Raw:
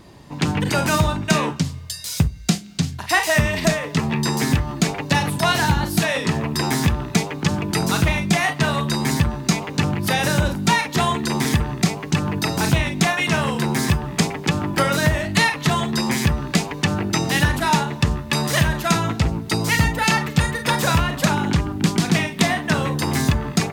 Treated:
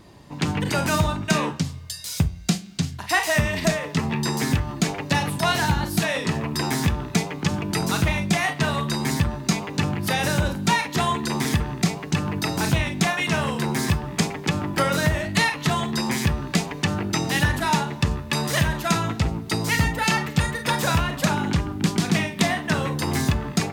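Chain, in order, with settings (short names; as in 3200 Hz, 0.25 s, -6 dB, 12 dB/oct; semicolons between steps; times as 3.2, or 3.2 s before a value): flange 0.63 Hz, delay 9.6 ms, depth 2 ms, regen +89%; gain +1.5 dB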